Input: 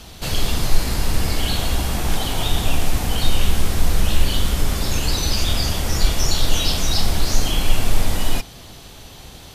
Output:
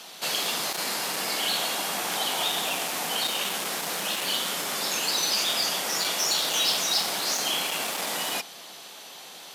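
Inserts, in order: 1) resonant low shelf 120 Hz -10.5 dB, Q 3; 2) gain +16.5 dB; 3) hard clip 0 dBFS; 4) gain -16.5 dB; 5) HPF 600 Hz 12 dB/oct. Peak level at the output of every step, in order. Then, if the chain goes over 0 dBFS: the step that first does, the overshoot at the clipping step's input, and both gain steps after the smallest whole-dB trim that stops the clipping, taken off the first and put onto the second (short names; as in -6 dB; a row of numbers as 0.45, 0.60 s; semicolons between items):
-8.0, +8.5, 0.0, -16.5, -13.0 dBFS; step 2, 8.5 dB; step 2 +7.5 dB, step 4 -7.5 dB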